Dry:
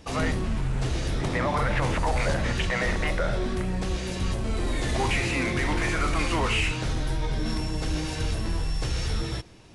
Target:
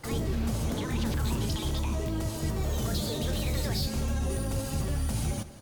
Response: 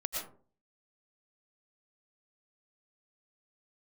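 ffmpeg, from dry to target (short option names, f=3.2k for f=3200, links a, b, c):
-filter_complex "[0:a]acrossover=split=290|3000[a][b][c];[b]acompressor=threshold=-39dB:ratio=6[d];[a][d][c]amix=inputs=3:normalize=0,asplit=2[e][f];[f]aecho=0:1:311:0.15[g];[e][g]amix=inputs=2:normalize=0,asetrate=76440,aresample=44100,volume=-2.5dB"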